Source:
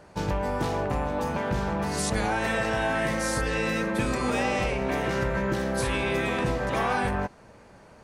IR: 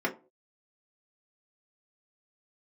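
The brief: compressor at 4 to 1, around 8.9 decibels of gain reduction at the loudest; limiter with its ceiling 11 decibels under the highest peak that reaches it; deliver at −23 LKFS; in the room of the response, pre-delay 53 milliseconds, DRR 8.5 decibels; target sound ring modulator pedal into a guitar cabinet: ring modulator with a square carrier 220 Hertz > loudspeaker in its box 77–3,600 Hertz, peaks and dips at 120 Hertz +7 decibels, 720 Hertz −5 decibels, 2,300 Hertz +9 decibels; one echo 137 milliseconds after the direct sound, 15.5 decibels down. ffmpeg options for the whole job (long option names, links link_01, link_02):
-filter_complex "[0:a]acompressor=threshold=-33dB:ratio=4,alimiter=level_in=10.5dB:limit=-24dB:level=0:latency=1,volume=-10.5dB,aecho=1:1:137:0.168,asplit=2[link_01][link_02];[1:a]atrim=start_sample=2205,adelay=53[link_03];[link_02][link_03]afir=irnorm=-1:irlink=0,volume=-18dB[link_04];[link_01][link_04]amix=inputs=2:normalize=0,aeval=exprs='val(0)*sgn(sin(2*PI*220*n/s))':channel_layout=same,highpass=77,equalizer=frequency=120:width_type=q:width=4:gain=7,equalizer=frequency=720:width_type=q:width=4:gain=-5,equalizer=frequency=2300:width_type=q:width=4:gain=9,lowpass=frequency=3600:width=0.5412,lowpass=frequency=3600:width=1.3066,volume=18dB"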